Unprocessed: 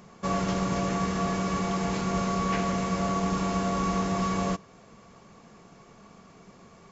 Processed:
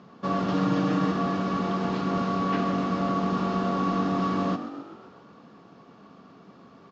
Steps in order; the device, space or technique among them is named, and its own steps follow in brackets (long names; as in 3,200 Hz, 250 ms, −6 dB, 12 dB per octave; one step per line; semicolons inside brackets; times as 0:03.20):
frequency-shifting delay pedal into a guitar cabinet (echo with shifted repeats 131 ms, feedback 59%, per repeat +47 Hz, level −12.5 dB; loudspeaker in its box 110–4,500 Hz, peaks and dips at 280 Hz +8 dB, 1,300 Hz +3 dB, 2,200 Hz −7 dB)
0:00.53–0:01.12: comb filter 6.5 ms, depth 74%